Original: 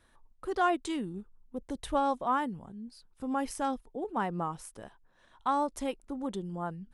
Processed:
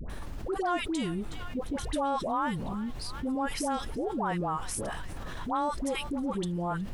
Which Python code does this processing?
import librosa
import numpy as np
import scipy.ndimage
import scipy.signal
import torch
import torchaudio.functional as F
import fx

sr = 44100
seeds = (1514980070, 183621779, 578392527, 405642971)

p1 = fx.dmg_noise_colour(x, sr, seeds[0], colour='brown', level_db=-55.0)
p2 = fx.dispersion(p1, sr, late='highs', ms=98.0, hz=860.0)
p3 = p2 + fx.echo_banded(p2, sr, ms=367, feedback_pct=70, hz=2800.0, wet_db=-22.0, dry=0)
p4 = fx.env_flatten(p3, sr, amount_pct=70)
y = F.gain(torch.from_numpy(p4), -4.0).numpy()